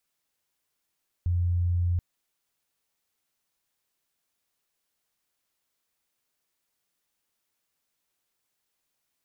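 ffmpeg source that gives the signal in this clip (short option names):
-f lavfi -i "aevalsrc='0.0794*sin(2*PI*87.7*t)':d=0.73:s=44100"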